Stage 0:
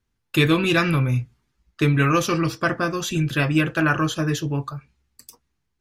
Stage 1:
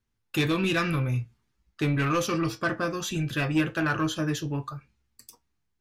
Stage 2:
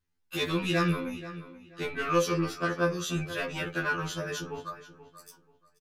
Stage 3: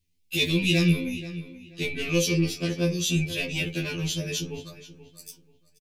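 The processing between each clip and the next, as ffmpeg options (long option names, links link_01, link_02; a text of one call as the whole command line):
ffmpeg -i in.wav -af "asoftclip=type=tanh:threshold=-13.5dB,flanger=delay=8.9:depth=1.5:regen=71:speed=0.78:shape=triangular" out.wav
ffmpeg -i in.wav -filter_complex "[0:a]asplit=2[link_01][link_02];[link_02]adelay=482,lowpass=frequency=3900:poles=1,volume=-14.5dB,asplit=2[link_03][link_04];[link_04]adelay=482,lowpass=frequency=3900:poles=1,volume=0.26,asplit=2[link_05][link_06];[link_06]adelay=482,lowpass=frequency=3900:poles=1,volume=0.26[link_07];[link_01][link_03][link_05][link_07]amix=inputs=4:normalize=0,afftfilt=real='re*2*eq(mod(b,4),0)':imag='im*2*eq(mod(b,4),0)':win_size=2048:overlap=0.75" out.wav
ffmpeg -i in.wav -af "firequalizer=gain_entry='entry(160,0);entry(1300,-27);entry(2300,1)':delay=0.05:min_phase=1,volume=7.5dB" out.wav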